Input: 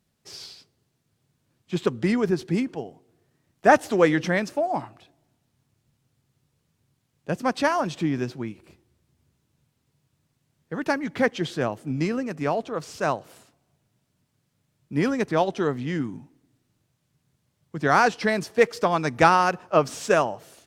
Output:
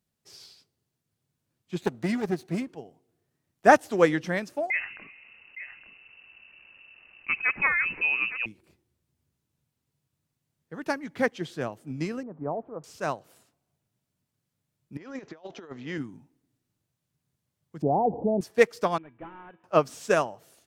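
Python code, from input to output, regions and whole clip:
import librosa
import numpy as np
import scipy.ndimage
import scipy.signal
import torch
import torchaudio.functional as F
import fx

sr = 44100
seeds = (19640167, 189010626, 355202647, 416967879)

y = fx.chain(x, sr, fx.lower_of_two(delay_ms=0.48),
    fx.highpass(hz=95.0, slope=12), at=(1.81, 2.68))
y = fx.chain(y, sr, fx.echo_single(ms=864, db=-17.0),
    fx.freq_invert(carrier_hz=2800),
    fx.env_flatten(amount_pct=50), at=(4.7, 8.46))
y = fx.chain(y, sr, fx.crossing_spikes(level_db=-23.0),
    fx.lowpass(hz=1000.0, slope=24), at=(12.23, 12.84))
y = fx.chain(y, sr, fx.bass_treble(bass_db=-10, treble_db=-5),
    fx.over_compress(threshold_db=-30.0, ratio=-0.5),
    fx.resample_bad(factor=3, down='none', up='filtered'), at=(14.97, 15.98))
y = fx.chain(y, sr, fx.steep_lowpass(hz=860.0, slope=72),
    fx.env_flatten(amount_pct=70), at=(17.82, 18.41))
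y = fx.chain(y, sr, fx.cvsd(bps=16000),
    fx.lowpass(hz=2500.0, slope=6),
    fx.comb_fb(f0_hz=330.0, decay_s=0.24, harmonics='odd', damping=0.0, mix_pct=80), at=(18.98, 19.64))
y = fx.high_shelf(y, sr, hz=10000.0, db=7.5)
y = fx.upward_expand(y, sr, threshold_db=-31.0, expansion=1.5)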